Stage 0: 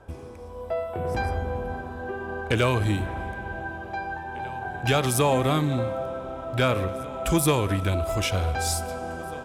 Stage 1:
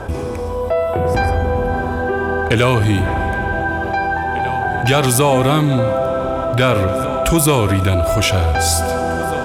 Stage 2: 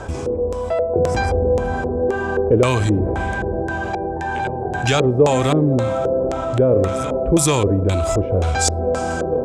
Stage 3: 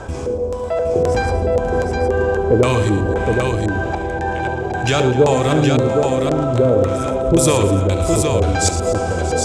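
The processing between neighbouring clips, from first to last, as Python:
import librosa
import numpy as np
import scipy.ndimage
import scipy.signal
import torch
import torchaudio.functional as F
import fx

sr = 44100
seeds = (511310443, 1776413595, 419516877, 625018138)

y1 = fx.env_flatten(x, sr, amount_pct=50)
y1 = F.gain(torch.from_numpy(y1), 6.5).numpy()
y2 = fx.filter_lfo_lowpass(y1, sr, shape='square', hz=1.9, low_hz=470.0, high_hz=7300.0, q=2.8)
y2 = F.gain(torch.from_numpy(y2), -3.5).numpy()
y3 = fx.echo_multitap(y2, sr, ms=(71, 114, 249, 633, 767), db=(-12.5, -12.5, -17.5, -15.0, -4.5))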